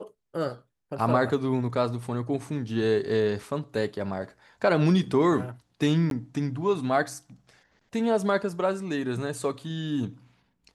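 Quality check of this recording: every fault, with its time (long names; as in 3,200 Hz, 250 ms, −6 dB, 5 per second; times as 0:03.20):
0:06.10–0:06.11: drop-out 12 ms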